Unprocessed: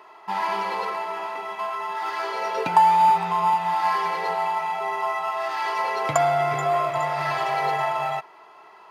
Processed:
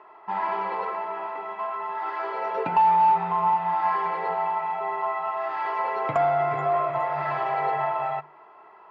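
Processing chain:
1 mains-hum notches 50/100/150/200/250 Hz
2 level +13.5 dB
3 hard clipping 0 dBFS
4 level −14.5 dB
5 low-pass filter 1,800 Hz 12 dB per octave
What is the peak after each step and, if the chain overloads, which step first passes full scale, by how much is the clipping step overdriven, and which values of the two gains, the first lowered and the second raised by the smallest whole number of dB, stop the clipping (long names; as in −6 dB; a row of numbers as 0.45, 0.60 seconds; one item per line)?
−4.0, +9.5, 0.0, −14.5, −14.0 dBFS
step 2, 9.5 dB
step 2 +3.5 dB, step 4 −4.5 dB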